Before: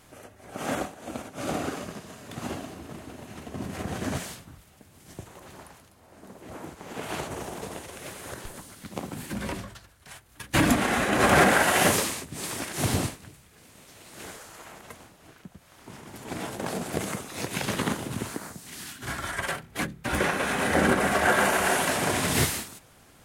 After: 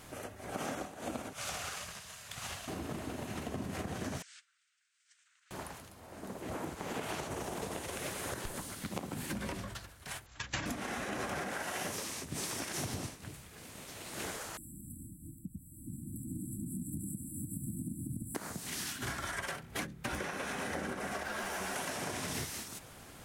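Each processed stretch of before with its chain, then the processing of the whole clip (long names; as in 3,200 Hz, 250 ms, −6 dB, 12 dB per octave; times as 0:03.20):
0:01.33–0:02.68: guitar amp tone stack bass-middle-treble 10-0-10 + highs frequency-modulated by the lows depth 0.23 ms
0:04.22–0:05.51: Chebyshev band-pass filter 1,400–8,400 Hz, order 4 + noise gate −51 dBFS, range −18 dB + downward compressor 12 to 1, threshold −50 dBFS
0:10.26–0:10.66: linear-phase brick-wall low-pass 7,700 Hz + parametric band 290 Hz −9 dB 1.8 octaves
0:14.57–0:18.35: comb filter 0.9 ms, depth 99% + downward compressor 2 to 1, threshold −43 dBFS + linear-phase brick-wall band-stop 340–7,300 Hz
0:21.23–0:21.76: hard clipping −21.5 dBFS + string-ensemble chorus
whole clip: dynamic equaliser 5,700 Hz, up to +6 dB, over −51 dBFS, Q 3.7; downward compressor 16 to 1, threshold −38 dBFS; level +3 dB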